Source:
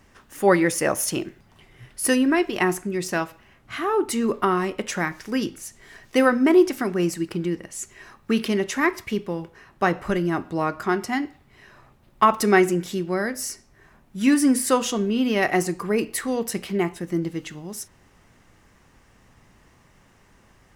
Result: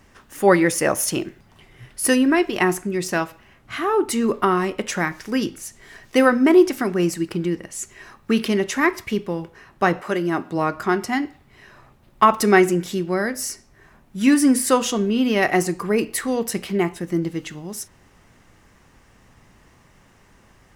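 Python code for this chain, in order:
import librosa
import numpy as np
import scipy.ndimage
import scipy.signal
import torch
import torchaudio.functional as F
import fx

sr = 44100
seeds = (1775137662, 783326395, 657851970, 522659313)

y = fx.highpass(x, sr, hz=fx.line((10.0, 360.0), (10.55, 110.0)), slope=12, at=(10.0, 10.55), fade=0.02)
y = y * 10.0 ** (2.5 / 20.0)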